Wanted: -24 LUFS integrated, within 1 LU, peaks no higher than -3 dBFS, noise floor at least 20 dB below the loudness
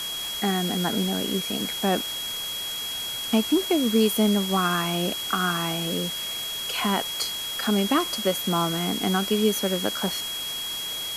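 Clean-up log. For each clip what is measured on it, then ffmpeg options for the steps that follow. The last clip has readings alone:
steady tone 3300 Hz; tone level -30 dBFS; noise floor -32 dBFS; noise floor target -45 dBFS; loudness -24.5 LUFS; peak -9.5 dBFS; loudness target -24.0 LUFS
-> -af "bandreject=f=3.3k:w=30"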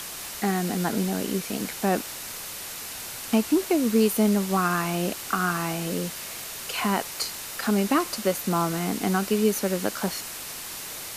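steady tone none; noise floor -37 dBFS; noise floor target -46 dBFS
-> -af "afftdn=nr=9:nf=-37"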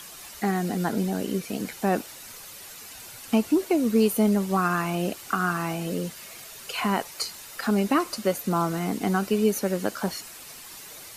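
noise floor -43 dBFS; noise floor target -46 dBFS
-> -af "afftdn=nr=6:nf=-43"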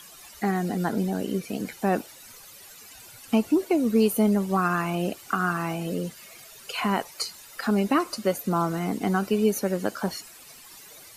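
noise floor -48 dBFS; loudness -26.0 LUFS; peak -11.0 dBFS; loudness target -24.0 LUFS
-> -af "volume=2dB"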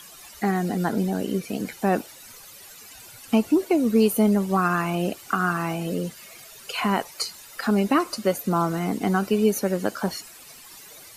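loudness -24.0 LUFS; peak -9.0 dBFS; noise floor -46 dBFS

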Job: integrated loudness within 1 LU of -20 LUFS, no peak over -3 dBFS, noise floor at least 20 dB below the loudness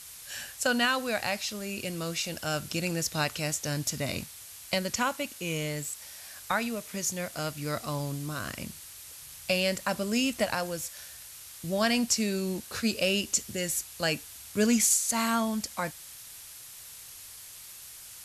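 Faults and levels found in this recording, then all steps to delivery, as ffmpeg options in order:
noise floor -47 dBFS; noise floor target -50 dBFS; loudness -29.5 LUFS; peak -14.0 dBFS; loudness target -20.0 LUFS
-> -af "afftdn=nr=6:nf=-47"
-af "volume=9.5dB"

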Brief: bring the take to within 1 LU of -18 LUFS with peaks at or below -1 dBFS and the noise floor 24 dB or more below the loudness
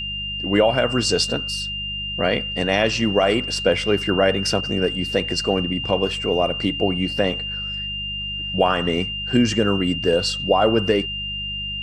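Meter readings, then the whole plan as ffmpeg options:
hum 50 Hz; harmonics up to 200 Hz; hum level -33 dBFS; steady tone 2800 Hz; tone level -26 dBFS; loudness -21.0 LUFS; peak -4.5 dBFS; loudness target -18.0 LUFS
-> -af "bandreject=f=50:t=h:w=4,bandreject=f=100:t=h:w=4,bandreject=f=150:t=h:w=4,bandreject=f=200:t=h:w=4"
-af "bandreject=f=2.8k:w=30"
-af "volume=3dB"

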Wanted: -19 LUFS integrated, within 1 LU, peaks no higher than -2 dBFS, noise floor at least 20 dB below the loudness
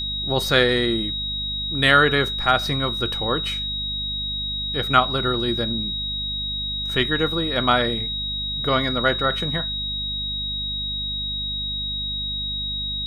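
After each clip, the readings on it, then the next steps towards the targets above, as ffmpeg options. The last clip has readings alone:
hum 50 Hz; harmonics up to 250 Hz; hum level -32 dBFS; steady tone 3800 Hz; tone level -25 dBFS; loudness -21.5 LUFS; peak -3.0 dBFS; loudness target -19.0 LUFS
-> -af "bandreject=f=50:t=h:w=6,bandreject=f=100:t=h:w=6,bandreject=f=150:t=h:w=6,bandreject=f=200:t=h:w=6,bandreject=f=250:t=h:w=6"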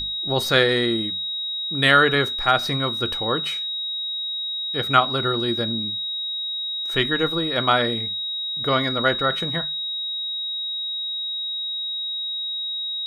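hum none; steady tone 3800 Hz; tone level -25 dBFS
-> -af "bandreject=f=3.8k:w=30"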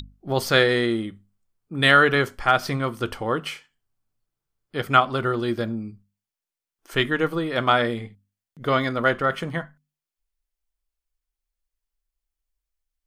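steady tone none; loudness -22.0 LUFS; peak -3.0 dBFS; loudness target -19.0 LUFS
-> -af "volume=3dB,alimiter=limit=-2dB:level=0:latency=1"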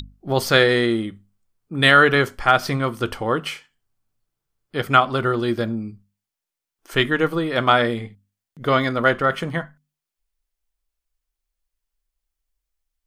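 loudness -19.5 LUFS; peak -2.0 dBFS; noise floor -86 dBFS

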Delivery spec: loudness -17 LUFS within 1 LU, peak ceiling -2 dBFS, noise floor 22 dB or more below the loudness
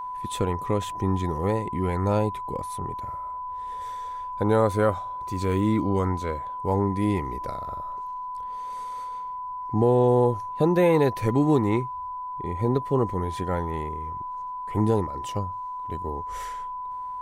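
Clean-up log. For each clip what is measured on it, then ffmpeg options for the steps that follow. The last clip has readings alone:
steady tone 1000 Hz; tone level -31 dBFS; loudness -26.5 LUFS; peak -9.0 dBFS; loudness target -17.0 LUFS
-> -af "bandreject=f=1k:w=30"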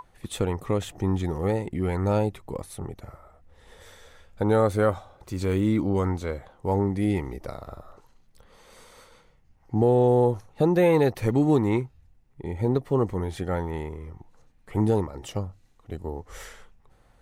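steady tone none; loudness -25.5 LUFS; peak -9.0 dBFS; loudness target -17.0 LUFS
-> -af "volume=8.5dB,alimiter=limit=-2dB:level=0:latency=1"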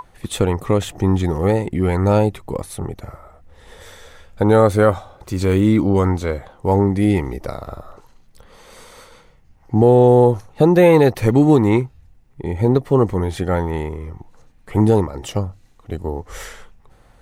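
loudness -17.0 LUFS; peak -2.0 dBFS; noise floor -50 dBFS

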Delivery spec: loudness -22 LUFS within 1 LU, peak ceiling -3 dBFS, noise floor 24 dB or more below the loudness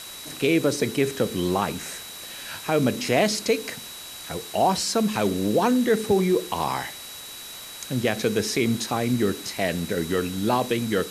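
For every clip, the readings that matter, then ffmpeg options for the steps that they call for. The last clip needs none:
steady tone 3900 Hz; tone level -41 dBFS; noise floor -39 dBFS; noise floor target -48 dBFS; loudness -24.0 LUFS; peak -7.5 dBFS; loudness target -22.0 LUFS
-> -af "bandreject=f=3.9k:w=30"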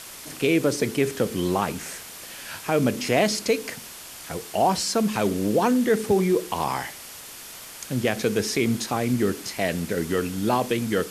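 steady tone none; noise floor -41 dBFS; noise floor target -48 dBFS
-> -af "afftdn=nr=7:nf=-41"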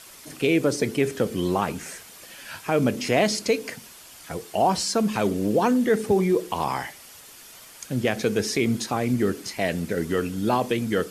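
noise floor -46 dBFS; noise floor target -48 dBFS
-> -af "afftdn=nr=6:nf=-46"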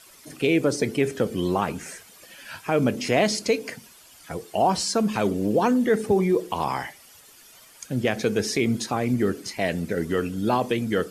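noise floor -51 dBFS; loudness -24.0 LUFS; peak -7.5 dBFS; loudness target -22.0 LUFS
-> -af "volume=2dB"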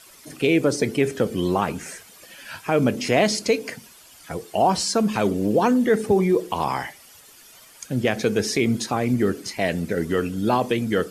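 loudness -22.0 LUFS; peak -5.5 dBFS; noise floor -49 dBFS

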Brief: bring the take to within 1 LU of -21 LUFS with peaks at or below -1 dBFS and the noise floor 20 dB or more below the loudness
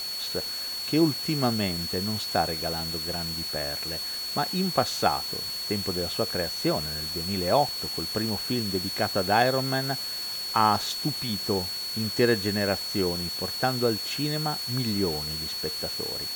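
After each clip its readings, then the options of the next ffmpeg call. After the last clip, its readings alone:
steady tone 4400 Hz; tone level -31 dBFS; noise floor -33 dBFS; noise floor target -47 dBFS; loudness -26.5 LUFS; peak -6.5 dBFS; loudness target -21.0 LUFS
-> -af "bandreject=f=4.4k:w=30"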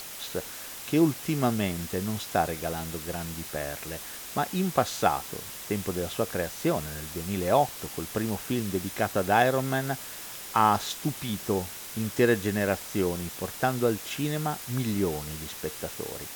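steady tone none; noise floor -41 dBFS; noise floor target -49 dBFS
-> -af "afftdn=nr=8:nf=-41"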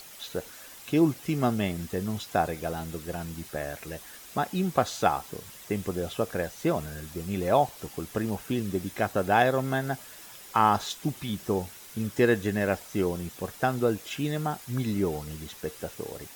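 noise floor -47 dBFS; noise floor target -49 dBFS
-> -af "afftdn=nr=6:nf=-47"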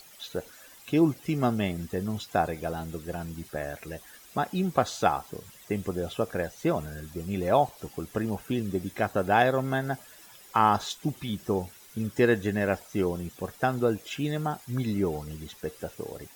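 noise floor -52 dBFS; loudness -29.0 LUFS; peak -7.0 dBFS; loudness target -21.0 LUFS
-> -af "volume=8dB,alimiter=limit=-1dB:level=0:latency=1"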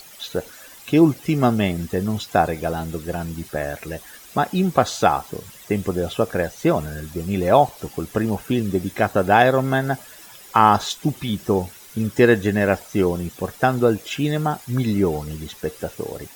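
loudness -21.0 LUFS; peak -1.0 dBFS; noise floor -44 dBFS

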